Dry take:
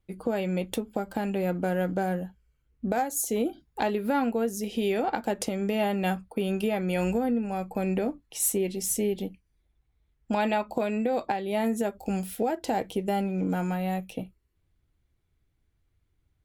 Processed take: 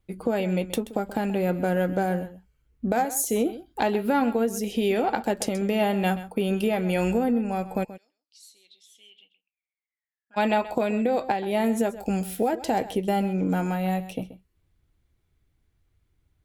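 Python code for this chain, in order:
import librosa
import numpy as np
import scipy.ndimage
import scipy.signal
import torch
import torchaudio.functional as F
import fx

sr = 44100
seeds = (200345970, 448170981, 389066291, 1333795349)

y = fx.bandpass_q(x, sr, hz=fx.line((7.83, 6000.0), (10.36, 1600.0)), q=16.0, at=(7.83, 10.36), fade=0.02)
y = y + 10.0 ** (-15.0 / 20.0) * np.pad(y, (int(130 * sr / 1000.0), 0))[:len(y)]
y = y * 10.0 ** (3.0 / 20.0)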